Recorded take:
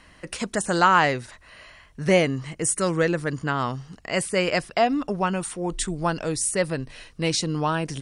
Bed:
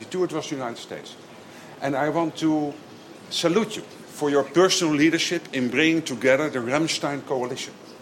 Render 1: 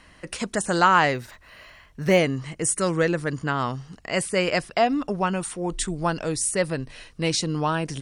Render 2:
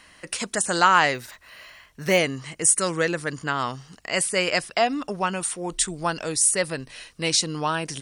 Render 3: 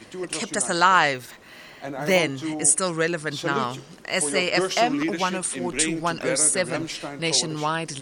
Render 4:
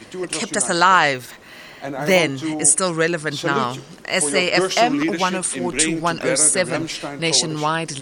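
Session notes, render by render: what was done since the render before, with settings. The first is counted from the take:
1.14–2.18 s: decimation joined by straight lines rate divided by 2×
tilt EQ +2 dB/octave
add bed -8 dB
trim +4.5 dB; peak limiter -2 dBFS, peak gain reduction 2.5 dB

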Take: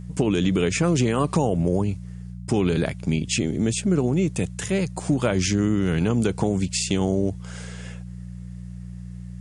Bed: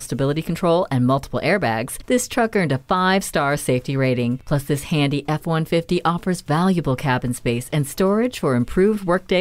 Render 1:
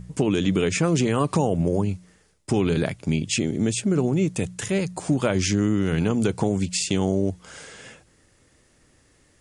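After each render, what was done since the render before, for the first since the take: de-hum 60 Hz, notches 3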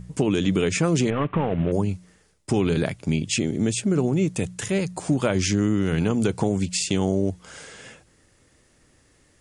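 1.10–1.72 s: CVSD coder 16 kbps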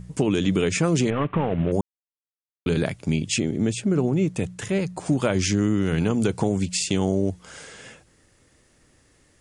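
1.81–2.66 s: mute; 3.40–5.06 s: treble shelf 4.5 kHz -7.5 dB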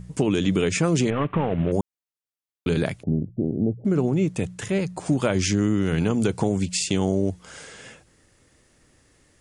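3.03–3.85 s: steep low-pass 800 Hz 96 dB/octave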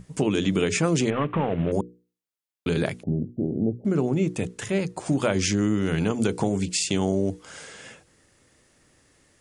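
bass shelf 86 Hz -7 dB; hum notches 60/120/180/240/300/360/420/480 Hz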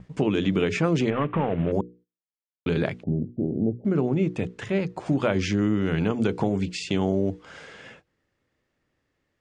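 low-pass 3.4 kHz 12 dB/octave; gate -50 dBFS, range -13 dB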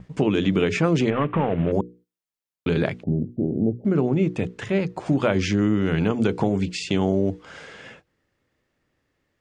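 trim +2.5 dB

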